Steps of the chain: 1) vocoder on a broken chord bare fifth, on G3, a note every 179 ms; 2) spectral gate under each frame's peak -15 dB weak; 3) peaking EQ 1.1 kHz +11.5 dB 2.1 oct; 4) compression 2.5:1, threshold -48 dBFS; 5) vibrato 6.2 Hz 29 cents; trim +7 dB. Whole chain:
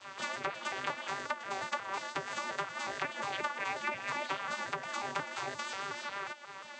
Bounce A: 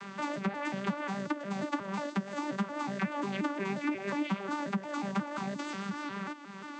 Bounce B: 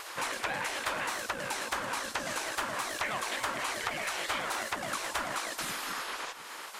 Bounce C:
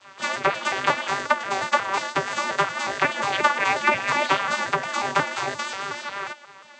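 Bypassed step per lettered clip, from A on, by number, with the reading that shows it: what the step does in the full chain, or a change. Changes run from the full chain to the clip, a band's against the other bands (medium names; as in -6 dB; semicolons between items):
2, 250 Hz band +19.0 dB; 1, 8 kHz band +7.5 dB; 4, mean gain reduction 11.0 dB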